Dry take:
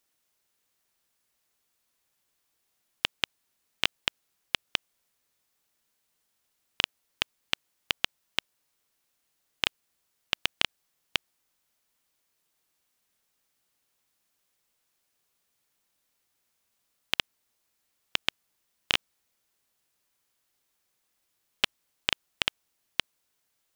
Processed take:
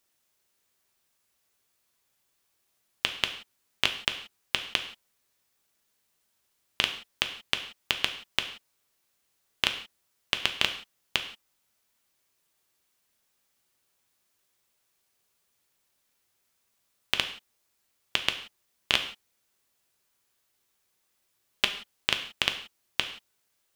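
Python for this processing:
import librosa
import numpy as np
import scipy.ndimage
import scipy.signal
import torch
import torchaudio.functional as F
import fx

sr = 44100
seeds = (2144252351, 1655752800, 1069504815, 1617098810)

y = fx.rev_gated(x, sr, seeds[0], gate_ms=200, shape='falling', drr_db=5.5)
y = y * librosa.db_to_amplitude(1.0)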